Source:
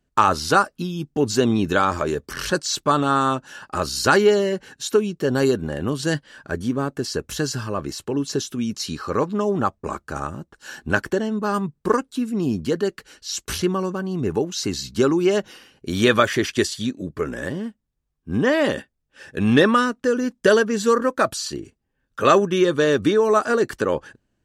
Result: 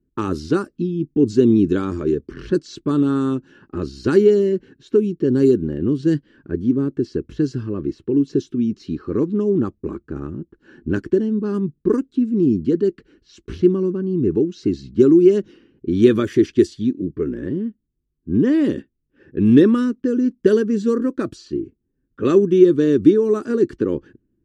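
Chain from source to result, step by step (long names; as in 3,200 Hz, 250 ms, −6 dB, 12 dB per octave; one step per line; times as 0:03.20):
low-pass that shuts in the quiet parts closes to 1,700 Hz, open at −13.5 dBFS
low shelf with overshoot 490 Hz +12 dB, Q 3
level −10.5 dB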